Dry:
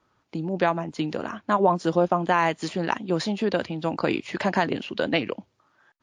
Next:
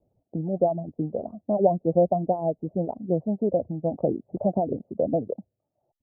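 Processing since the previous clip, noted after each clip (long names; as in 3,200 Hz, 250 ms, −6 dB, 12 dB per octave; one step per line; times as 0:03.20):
Butterworth low-pass 700 Hz 48 dB per octave
reverb reduction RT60 0.67 s
comb filter 1.5 ms, depth 36%
level +2 dB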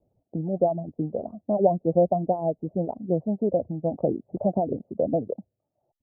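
no processing that can be heard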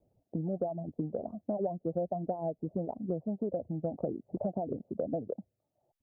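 downward compressor 5 to 1, threshold −29 dBFS, peak gain reduction 14 dB
level −1.5 dB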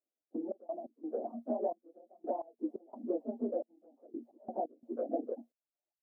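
random phases in long frames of 50 ms
Chebyshev high-pass with heavy ripple 230 Hz, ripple 3 dB
gate pattern "..x.x.xxxx." 87 BPM −24 dB
level +1.5 dB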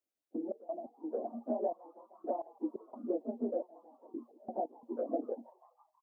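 echo with shifted repeats 164 ms, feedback 63%, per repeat +130 Hz, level −24 dB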